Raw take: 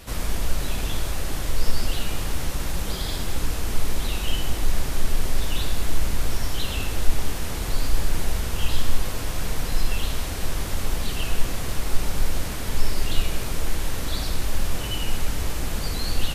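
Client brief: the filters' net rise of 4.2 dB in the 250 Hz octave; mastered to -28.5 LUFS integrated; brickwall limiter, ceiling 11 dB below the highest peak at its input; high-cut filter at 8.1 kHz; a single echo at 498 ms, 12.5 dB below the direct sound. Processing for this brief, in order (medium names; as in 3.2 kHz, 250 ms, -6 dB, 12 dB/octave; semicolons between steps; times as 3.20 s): low-pass 8.1 kHz; peaking EQ 250 Hz +5.5 dB; peak limiter -14.5 dBFS; delay 498 ms -12.5 dB; trim +1.5 dB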